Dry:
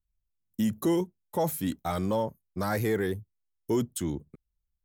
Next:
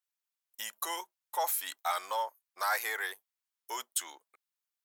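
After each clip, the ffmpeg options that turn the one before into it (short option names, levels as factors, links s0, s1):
-af "highpass=f=840:w=0.5412,highpass=f=840:w=1.3066,volume=1.58"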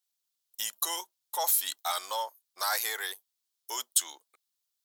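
-af "highshelf=f=2900:t=q:w=1.5:g=7"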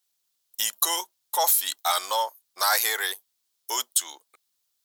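-af "alimiter=limit=0.178:level=0:latency=1:release=377,volume=2.37"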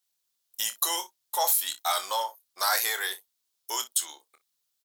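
-af "aecho=1:1:26|59:0.355|0.133,volume=0.668"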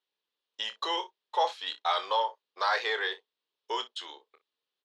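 -af "highpass=280,equalizer=f=440:t=q:w=4:g=8,equalizer=f=700:t=q:w=4:g=-5,equalizer=f=1400:t=q:w=4:g=-5,equalizer=f=2200:t=q:w=4:g=-5,lowpass=f=3400:w=0.5412,lowpass=f=3400:w=1.3066,volume=1.41"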